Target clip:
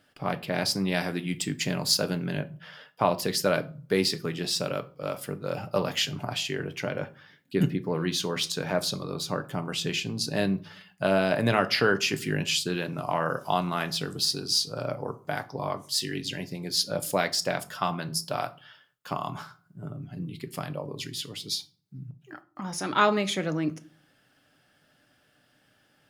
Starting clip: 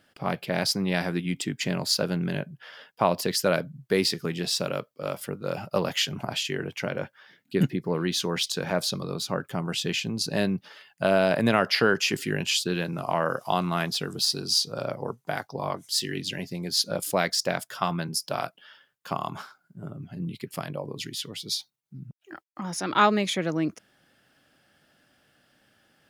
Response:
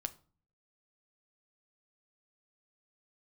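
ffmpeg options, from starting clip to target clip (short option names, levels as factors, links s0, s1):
-filter_complex "[0:a]asettb=1/sr,asplit=3[s0][s1][s2];[s0]atrim=end=0.804[s3];[s1]atrim=start=0.8:end=2.23,asetpts=PTS-STARTPTS,afade=t=in:d=0.004:c=qsin,afade=t=out:st=1.426:d=0.004:c=qsin,highshelf=f=5400:g=5.5[s4];[s2]atrim=start=2.226[s5];[s3][s4]acrossfade=d=0.004:c1=hsin:c2=qsin[s6];[s6][s5]acrossfade=d=0.004:c1=qsin:c2=hsin,asettb=1/sr,asplit=3[s7][s8][s9];[s7]atrim=end=14.684[s10];[s8]atrim=start=14.68:end=15.22,asetpts=PTS-STARTPTS,afade=t=in:d=0.004:c=qsin,afade=t=out:st=0.536:d=0.004:c=qsin,bandreject=f=3600:w=8.7[s11];[s9]atrim=start=15.216[s12];[s10][s11]acrossfade=d=0.004:c1=hsin:c2=qsin[s13];[s13][s12]acrossfade=d=0.004:c1=qsin:c2=hsin[s14];[1:a]atrim=start_sample=2205[s15];[s14][s15]afir=irnorm=-1:irlink=0"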